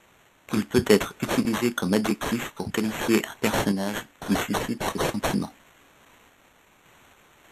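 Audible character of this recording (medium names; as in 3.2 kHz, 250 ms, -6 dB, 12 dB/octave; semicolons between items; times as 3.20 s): a quantiser's noise floor 10-bit, dither triangular; random-step tremolo; aliases and images of a low sample rate 4.9 kHz, jitter 0%; Vorbis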